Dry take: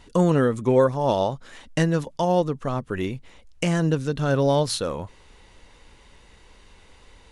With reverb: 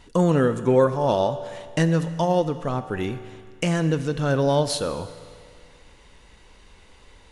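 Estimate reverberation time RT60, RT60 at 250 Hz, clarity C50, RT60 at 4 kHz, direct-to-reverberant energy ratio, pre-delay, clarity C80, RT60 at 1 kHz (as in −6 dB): 2.0 s, 2.0 s, 12.0 dB, 1.9 s, 10.5 dB, 8 ms, 13.0 dB, 2.0 s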